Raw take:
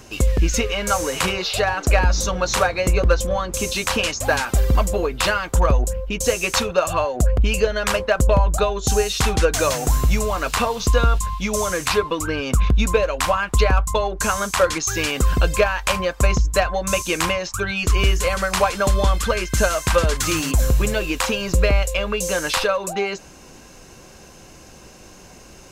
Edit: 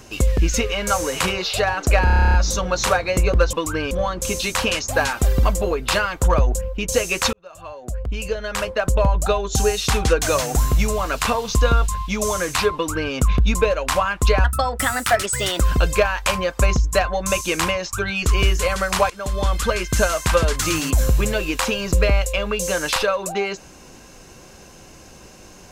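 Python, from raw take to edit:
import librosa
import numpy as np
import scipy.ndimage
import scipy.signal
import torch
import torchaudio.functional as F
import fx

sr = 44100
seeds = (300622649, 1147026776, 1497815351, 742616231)

y = fx.edit(x, sr, fx.stutter(start_s=2.04, slice_s=0.03, count=11),
    fx.fade_in_span(start_s=6.65, length_s=2.0),
    fx.duplicate(start_s=12.07, length_s=0.38, to_s=3.23),
    fx.speed_span(start_s=13.76, length_s=1.45, speed=1.25),
    fx.fade_in_from(start_s=18.71, length_s=0.51, floor_db=-18.0), tone=tone)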